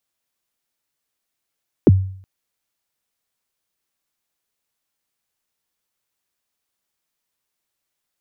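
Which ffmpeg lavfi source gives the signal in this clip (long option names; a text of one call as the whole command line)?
ffmpeg -f lavfi -i "aevalsrc='0.631*pow(10,-3*t/0.56)*sin(2*PI*(470*0.03/log(95/470)*(exp(log(95/470)*min(t,0.03)/0.03)-1)+95*max(t-0.03,0)))':duration=0.37:sample_rate=44100" out.wav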